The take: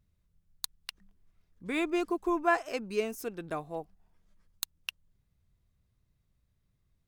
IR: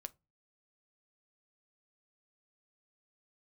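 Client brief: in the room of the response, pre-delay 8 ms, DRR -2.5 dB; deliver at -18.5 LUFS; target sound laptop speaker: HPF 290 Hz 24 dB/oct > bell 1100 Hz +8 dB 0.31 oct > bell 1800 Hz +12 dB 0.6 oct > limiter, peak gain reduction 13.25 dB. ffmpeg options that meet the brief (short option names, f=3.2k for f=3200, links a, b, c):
-filter_complex "[0:a]asplit=2[a][b];[1:a]atrim=start_sample=2205,adelay=8[c];[b][c]afir=irnorm=-1:irlink=0,volume=7dB[d];[a][d]amix=inputs=2:normalize=0,highpass=f=290:w=0.5412,highpass=f=290:w=1.3066,equalizer=f=1.1k:t=o:w=0.31:g=8,equalizer=f=1.8k:t=o:w=0.6:g=12,volume=13dB,alimiter=limit=-5.5dB:level=0:latency=1"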